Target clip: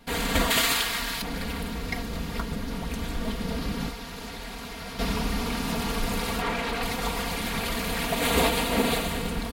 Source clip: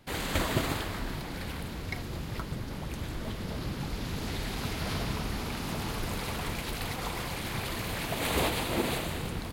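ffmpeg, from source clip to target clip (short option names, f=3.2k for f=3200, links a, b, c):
-filter_complex "[0:a]asettb=1/sr,asplit=3[a][b][c];[a]atrim=end=0.504[d];[b]atrim=start=0.5:end=1.22,asetpts=PTS-STARTPTS,afade=t=in:d=0.004:c=qsin,afade=t=out:st=0.716:d=0.004:c=qsin,tiltshelf=f=970:g=-9[e];[c]atrim=start=1.216[f];[d][e]acrossfade=d=0.004:c1=hsin:c2=qsin[g];[g][f]acrossfade=d=0.004:c1=qsin:c2=hsin,asettb=1/sr,asplit=3[h][i][j];[h]atrim=end=3.894[k];[i]atrim=start=3.89:end=4.99,asetpts=PTS-STARTPTS,afade=t=in:d=0.004:c=qsin,afade=t=out:st=1.096:d=0.004:c=qsin,acrossover=split=530|1500[l][m][n];[l]acompressor=threshold=-46dB:ratio=4[o];[m]acompressor=threshold=-49dB:ratio=4[p];[n]acompressor=threshold=-48dB:ratio=4[q];[o][p][q]amix=inputs=3:normalize=0[r];[j]atrim=start=4.986[s];[k][r]acrossfade=d=0.004:c1=hsin:c2=qsin[t];[t][s]acrossfade=d=0.004:c1=qsin:c2=hsin,asettb=1/sr,asplit=3[u][v][w];[u]atrim=end=6.414[x];[v]atrim=start=6.41:end=6.83,asetpts=PTS-STARTPTS,afade=t=in:d=0.004:c=qsin,afade=t=out:st=0.416:d=0.004:c=qsin,asplit=2[y][z];[z]highpass=f=720:p=1,volume=15dB,asoftclip=type=tanh:threshold=-20dB[aa];[y][aa]amix=inputs=2:normalize=0,lowpass=f=1.3k:p=1,volume=-6dB[ab];[w]atrim=start=6.826[ac];[x][ab]acrossfade=d=0.004:c1=hsin:c2=qsin[ad];[ad][ac]acrossfade=d=0.004:c1=qsin:c2=hsin,aecho=1:1:4.3:0.84,volume=3.5dB"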